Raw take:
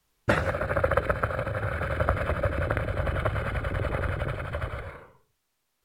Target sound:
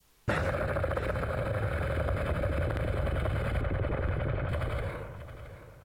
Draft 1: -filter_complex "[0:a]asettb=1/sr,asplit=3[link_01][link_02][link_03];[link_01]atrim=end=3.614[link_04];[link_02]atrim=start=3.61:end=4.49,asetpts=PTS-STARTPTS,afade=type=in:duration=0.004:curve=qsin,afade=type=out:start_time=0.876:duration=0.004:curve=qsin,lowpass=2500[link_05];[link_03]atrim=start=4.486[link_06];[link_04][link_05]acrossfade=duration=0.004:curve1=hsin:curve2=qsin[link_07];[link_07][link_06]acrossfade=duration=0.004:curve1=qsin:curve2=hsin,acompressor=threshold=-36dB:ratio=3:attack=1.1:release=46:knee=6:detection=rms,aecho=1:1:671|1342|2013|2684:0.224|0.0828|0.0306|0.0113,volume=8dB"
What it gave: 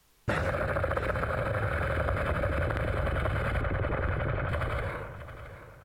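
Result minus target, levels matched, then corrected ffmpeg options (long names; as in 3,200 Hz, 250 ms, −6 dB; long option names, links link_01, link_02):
1,000 Hz band +2.5 dB
-filter_complex "[0:a]asettb=1/sr,asplit=3[link_01][link_02][link_03];[link_01]atrim=end=3.614[link_04];[link_02]atrim=start=3.61:end=4.49,asetpts=PTS-STARTPTS,afade=type=in:duration=0.004:curve=qsin,afade=type=out:start_time=0.876:duration=0.004:curve=qsin,lowpass=2500[link_05];[link_03]atrim=start=4.486[link_06];[link_04][link_05]acrossfade=duration=0.004:curve1=hsin:curve2=qsin[link_07];[link_07][link_06]acrossfade=duration=0.004:curve1=qsin:curve2=hsin,acompressor=threshold=-36dB:ratio=3:attack=1.1:release=46:knee=6:detection=rms,adynamicequalizer=threshold=0.00224:dfrequency=1400:dqfactor=0.86:tfrequency=1400:tqfactor=0.86:attack=5:release=100:ratio=0.438:range=3:mode=cutabove:tftype=bell,aecho=1:1:671|1342|2013|2684:0.224|0.0828|0.0306|0.0113,volume=8dB"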